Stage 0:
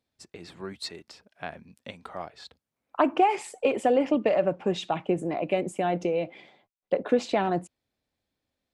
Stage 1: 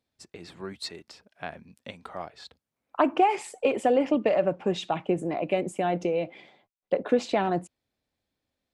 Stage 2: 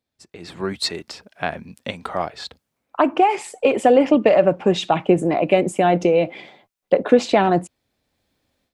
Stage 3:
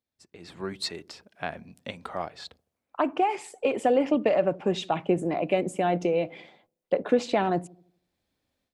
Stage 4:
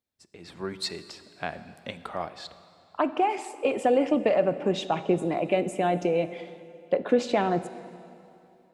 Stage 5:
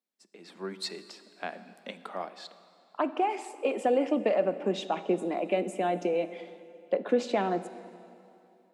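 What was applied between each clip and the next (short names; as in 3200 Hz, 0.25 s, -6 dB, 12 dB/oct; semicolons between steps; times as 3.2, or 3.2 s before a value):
nothing audible
AGC gain up to 14 dB; gain -1 dB
dark delay 79 ms, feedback 45%, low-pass 420 Hz, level -18 dB; gain -8.5 dB
reverb RT60 2.8 s, pre-delay 20 ms, DRR 13 dB
elliptic high-pass 190 Hz; gain -3 dB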